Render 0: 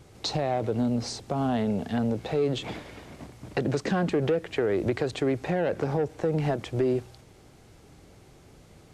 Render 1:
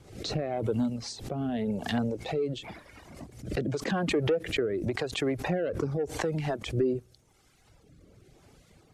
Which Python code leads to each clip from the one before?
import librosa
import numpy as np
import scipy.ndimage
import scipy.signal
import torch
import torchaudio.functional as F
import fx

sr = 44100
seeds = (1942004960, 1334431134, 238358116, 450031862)

y = fx.rotary(x, sr, hz=0.9)
y = fx.dereverb_blind(y, sr, rt60_s=1.5)
y = fx.pre_swell(y, sr, db_per_s=96.0)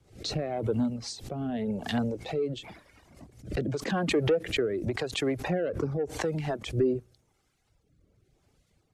y = fx.band_widen(x, sr, depth_pct=40)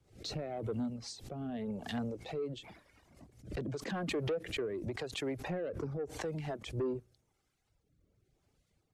y = 10.0 ** (-21.0 / 20.0) * np.tanh(x / 10.0 ** (-21.0 / 20.0))
y = y * 10.0 ** (-7.0 / 20.0)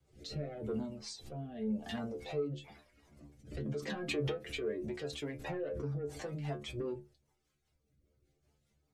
y = fx.rotary_switch(x, sr, hz=0.8, then_hz=5.0, switch_at_s=2.29)
y = fx.stiff_resonator(y, sr, f0_hz=71.0, decay_s=0.29, stiffness=0.002)
y = y * 10.0 ** (9.0 / 20.0)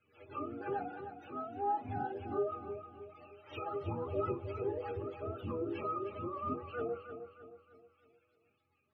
y = fx.octave_mirror(x, sr, pivot_hz=420.0)
y = scipy.signal.savgol_filter(y, 15, 4, mode='constant')
y = fx.echo_feedback(y, sr, ms=311, feedback_pct=43, wet_db=-9.5)
y = y * 10.0 ** (2.0 / 20.0)